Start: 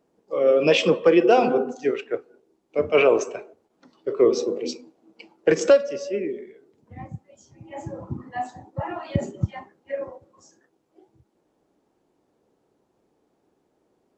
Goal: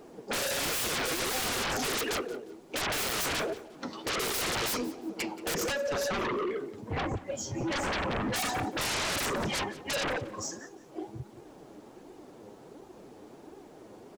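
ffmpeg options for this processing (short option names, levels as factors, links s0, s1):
-filter_complex "[0:a]asplit=3[s0][s1][s2];[s0]afade=t=out:st=5.53:d=0.02[s3];[s1]acompressor=threshold=0.0141:ratio=4,afade=t=in:st=5.53:d=0.02,afade=t=out:st=7.83:d=0.02[s4];[s2]afade=t=in:st=7.83:d=0.02[s5];[s3][s4][s5]amix=inputs=3:normalize=0,alimiter=limit=0.158:level=0:latency=1:release=18,volume=25.1,asoftclip=hard,volume=0.0398,flanger=delay=2.4:depth=7.4:regen=33:speed=1.4:shape=sinusoidal,aeval=exprs='0.0398*sin(PI/2*7.94*val(0)/0.0398)':c=same,aecho=1:1:177|354:0.119|0.0309"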